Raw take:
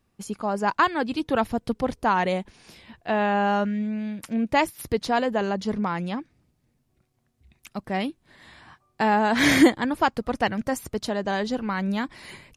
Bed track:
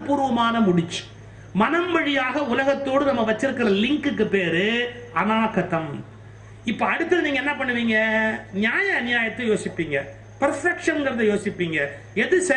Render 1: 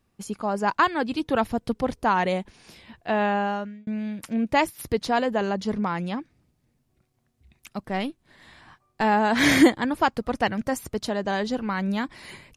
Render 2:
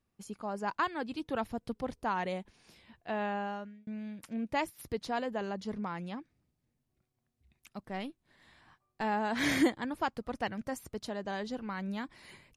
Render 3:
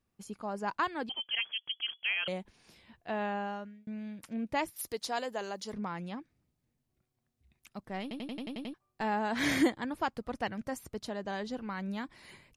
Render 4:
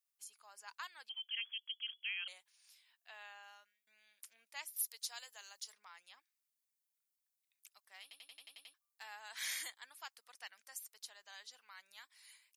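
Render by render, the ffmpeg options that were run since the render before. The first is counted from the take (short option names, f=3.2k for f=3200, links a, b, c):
-filter_complex "[0:a]asplit=3[a][b][c];[a]afade=t=out:st=7.86:d=0.02[d];[b]aeval=exprs='if(lt(val(0),0),0.708*val(0),val(0))':c=same,afade=t=in:st=7.86:d=0.02,afade=t=out:st=9.03:d=0.02[e];[c]afade=t=in:st=9.03:d=0.02[f];[d][e][f]amix=inputs=3:normalize=0,asplit=2[g][h];[g]atrim=end=3.87,asetpts=PTS-STARTPTS,afade=t=out:st=3.26:d=0.61[i];[h]atrim=start=3.87,asetpts=PTS-STARTPTS,afade=t=in:d=0.004:c=hsin[j];[i][j]concat=n=2:v=0:a=1"
-af "volume=-11dB"
-filter_complex "[0:a]asettb=1/sr,asplit=3[a][b][c];[a]atrim=end=1.094[d];[b]atrim=start=1.09:end=2.28,asetpts=PTS-STARTPTS,afade=t=in:d=0.004:c=qsin,afade=t=out:st=1.186:d=0.004:c=qsin,lowpass=f=2.9k:t=q:w=0.5098,lowpass=f=2.9k:t=q:w=0.6013,lowpass=f=2.9k:t=q:w=0.9,lowpass=f=2.9k:t=q:w=2.563,afreqshift=-3400[e];[c]atrim=start=2.276[f];[d][e]acrossfade=d=0.004:c1=hsin:c2=qsin[g];[g][f]acrossfade=d=0.004:c1=qsin:c2=hsin,asettb=1/sr,asplit=3[h][i][j];[h]atrim=end=4.764[k];[i]atrim=start=4.76:end=5.73,asetpts=PTS-STARTPTS,afade=t=in:d=0.004:c=qsin,afade=t=out:st=0.966:d=0.004:c=qsin,bass=f=250:g=-13,treble=f=4k:g=11[l];[j]atrim=start=5.726[m];[k][l]acrossfade=d=0.004:c1=hsin:c2=qsin[n];[n][m]acrossfade=d=0.004:c1=qsin:c2=hsin,asplit=9[o][p][q][r][s][t][u][v][w];[o]atrim=end=8.112[x];[p]atrim=start=8.018:end=8.112[y];[q]atrim=start=8.018:end=8.112[z];[r]atrim=start=8.018:end=8.112[aa];[s]atrim=start=8.018:end=8.112[ab];[t]atrim=start=8.018:end=8.112[ac];[u]atrim=start=8.018:end=8.112[ad];[v]atrim=start=8.018:end=8.112[ae];[w]atrim=start=8.738[af];[x][y]acrossfade=d=0.004:c1=hsin:c2=hsin[ag];[ag][z]acrossfade=d=0.004:c1=hsin:c2=hsin[ah];[ah][aa]acrossfade=d=0.004:c1=hsin:c2=hsin[ai];[ai][ab]acrossfade=d=0.004:c1=hsin:c2=hsin[aj];[aj][ac]acrossfade=d=0.004:c1=hsin:c2=hsin[ak];[ak][ad]acrossfade=d=0.004:c1=hsin:c2=hsin[al];[al][ae]acrossfade=d=0.004:c1=hsin:c2=hsin[am];[am][af]acrossfade=d=0.004:c1=hsin:c2=hsin"
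-af "highpass=910,aderivative"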